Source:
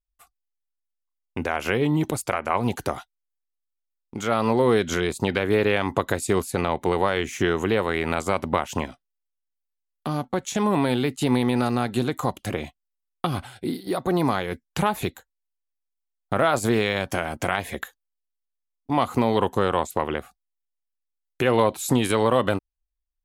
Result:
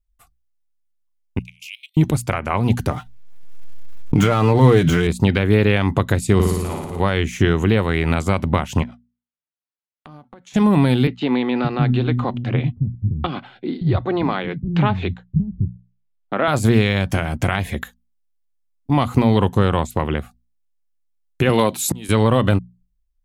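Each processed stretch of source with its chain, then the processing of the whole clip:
1.39–1.97 s: steep high-pass 2.3 kHz 96 dB/octave + peaking EQ 11 kHz -4 dB 0.3 oct + level held to a coarse grid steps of 19 dB
2.90–5.07 s: median filter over 9 samples + comb 6.6 ms, depth 57% + swell ahead of each attack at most 27 dB/s
6.34–7.00 s: slow attack 458 ms + flutter echo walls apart 9.7 m, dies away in 1.3 s
8.83–10.54 s: band-pass filter 1.2 kHz, Q 0.53 + compression 10:1, threshold -40 dBFS
11.07–16.48 s: low-pass 3.8 kHz 24 dB/octave + bands offset in time highs, lows 570 ms, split 220 Hz
21.49–22.09 s: high-pass 190 Hz + treble shelf 3.7 kHz +8.5 dB + slow attack 710 ms
whole clip: tone controls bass +15 dB, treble 0 dB; hum notches 60/120/180/240 Hz; dynamic bell 2.7 kHz, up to +4 dB, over -38 dBFS, Q 0.74

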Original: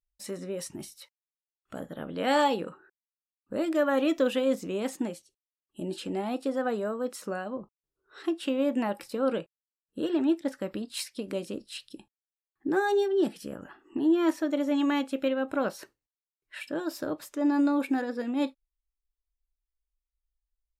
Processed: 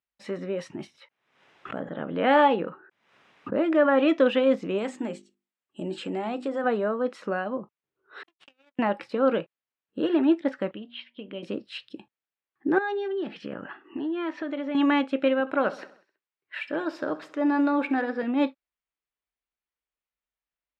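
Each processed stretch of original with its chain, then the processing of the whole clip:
0.87–3.99 s: treble shelf 3.9 kHz -9 dB + band-stop 4.4 kHz, Q 11 + swell ahead of each attack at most 81 dB/s
4.78–6.64 s: peaking EQ 7.8 kHz +14 dB 0.44 oct + hum notches 50/100/150/200/250/300/350/400 Hz + compression 2:1, threshold -32 dBFS
8.23–8.79 s: pre-emphasis filter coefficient 0.97 + power-law waveshaper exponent 3
10.71–11.43 s: four-pole ladder low-pass 3.3 kHz, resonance 80% + tilt EQ -2 dB/octave + de-hum 119.4 Hz, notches 8
12.78–14.75 s: treble shelf 2.4 kHz +10.5 dB + compression 4:1, threshold -33 dBFS + low-pass 3.3 kHz
15.40–18.23 s: bass shelf 270 Hz -6 dB + feedback delay 65 ms, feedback 56%, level -17 dB
whole clip: Chebyshev band-pass 130–2500 Hz, order 2; bass shelf 250 Hz -5.5 dB; trim +7 dB

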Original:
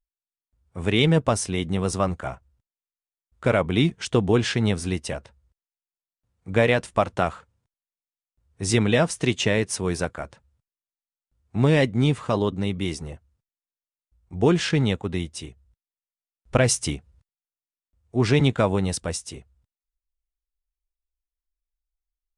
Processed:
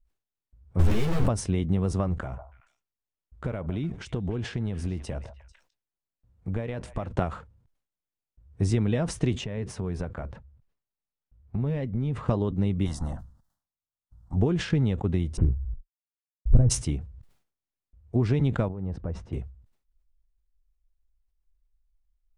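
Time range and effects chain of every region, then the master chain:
0.79–1.28 s: one-bit comparator + three-phase chorus
2.22–7.11 s: compression, threshold -34 dBFS + repeats whose band climbs or falls 148 ms, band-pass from 820 Hz, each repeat 1.4 oct, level -11 dB
9.44–12.28 s: treble shelf 5 kHz -9.5 dB + band-stop 320 Hz, Q 6.3 + compression 4:1, threshold -35 dBFS
12.85–14.36 s: spectral peaks clipped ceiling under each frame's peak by 16 dB + static phaser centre 1 kHz, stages 4
15.37–16.70 s: CVSD coder 16 kbps + low-pass 1.8 kHz + tilt EQ -4.5 dB/octave
18.68–19.33 s: low-pass 1.3 kHz + compression 2.5:1, threshold -39 dBFS
whole clip: compression 6:1, threshold -28 dBFS; tilt EQ -3 dB/octave; decay stretcher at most 120 dB/s

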